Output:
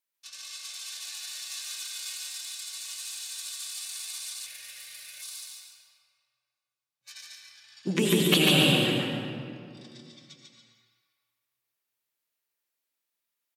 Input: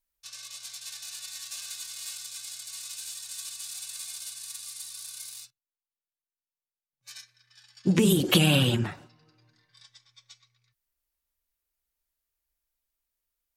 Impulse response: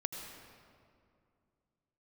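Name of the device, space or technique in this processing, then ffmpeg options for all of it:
stadium PA: -filter_complex "[0:a]highpass=210,equalizer=frequency=2700:width_type=o:width=1.8:gain=4,aecho=1:1:145.8|282.8:0.794|0.282[link_01];[1:a]atrim=start_sample=2205[link_02];[link_01][link_02]afir=irnorm=-1:irlink=0,asettb=1/sr,asplit=3[link_03][link_04][link_05];[link_03]atrim=end=4.464[link_06];[link_04]atrim=start=4.46:end=5.22,asetpts=PTS-STARTPTS,afade=type=in:duration=0.004:curve=qsin,afade=type=out:start_time=0.756:duration=0.004:curve=qsin,equalizer=frequency=125:width_type=o:width=1:gain=7,equalizer=frequency=250:width_type=o:width=1:gain=-4,equalizer=frequency=500:width_type=o:width=1:gain=11,equalizer=frequency=1000:width_type=o:width=1:gain=-10,equalizer=frequency=2000:width_type=o:width=1:gain=10,equalizer=frequency=4000:width_type=o:width=1:gain=-5,equalizer=frequency=8000:width_type=o:width=1:gain=-8[link_07];[link_05]atrim=start=5.216[link_08];[link_06][link_07]acrossfade=duration=0.004:curve1=hsin:curve2=qsin[link_09];[link_09][link_08]acrossfade=duration=0.004:curve1=qsin:curve2=hsin,volume=-2.5dB"

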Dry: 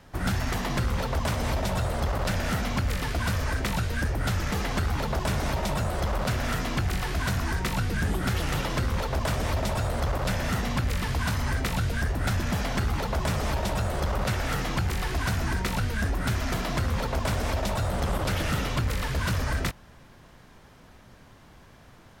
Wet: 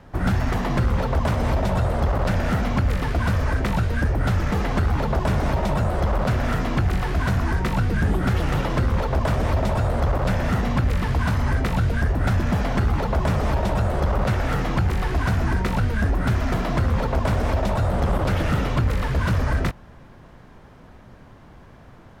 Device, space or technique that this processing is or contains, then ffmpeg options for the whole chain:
through cloth: -af "highshelf=frequency=2500:gain=-13,volume=6.5dB"

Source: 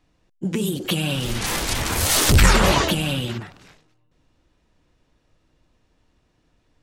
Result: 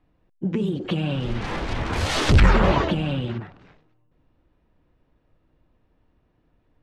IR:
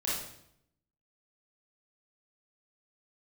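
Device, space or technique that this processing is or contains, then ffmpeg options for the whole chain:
phone in a pocket: -filter_complex "[0:a]lowpass=3500,highshelf=frequency=2000:gain=-10,asettb=1/sr,asplit=3[link_01][link_02][link_03];[link_01]atrim=end=1.934[link_04];[link_02]atrim=start=1.93:end=2.4,asetpts=PTS-STARTPTS,afade=type=in:duration=0.004:curve=qsin,afade=type=out:start_time=0.466:duration=0.004:curve=qsin,highshelf=frequency=2600:gain=10[link_05];[link_03]atrim=start=2.396[link_06];[link_04][link_05]acrossfade=duration=0.004:curve1=hsin:curve2=qsin[link_07];[link_07][link_06]acrossfade=duration=0.004:curve1=qsin:curve2=hsin"

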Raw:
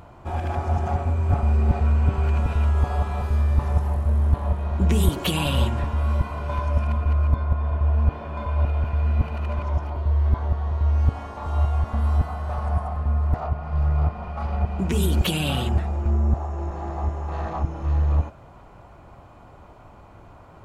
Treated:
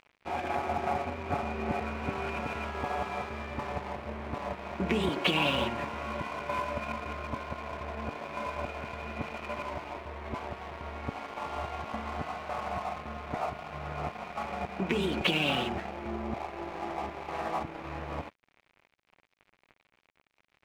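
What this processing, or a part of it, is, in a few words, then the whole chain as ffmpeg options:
pocket radio on a weak battery: -af "highpass=250,lowpass=3300,aeval=exprs='sgn(val(0))*max(abs(val(0))-0.00668,0)':channel_layout=same,equalizer=frequency=2300:width_type=o:width=0.51:gain=7"

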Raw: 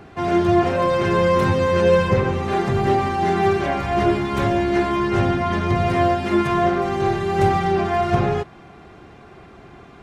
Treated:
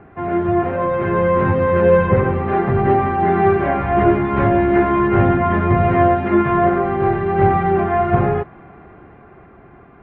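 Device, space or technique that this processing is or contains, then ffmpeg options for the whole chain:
action camera in a waterproof case: -af "lowpass=frequency=2100:width=0.5412,lowpass=frequency=2100:width=1.3066,dynaudnorm=framelen=240:gausssize=11:maxgain=11.5dB,volume=-1dB" -ar 48000 -c:a aac -b:a 64k

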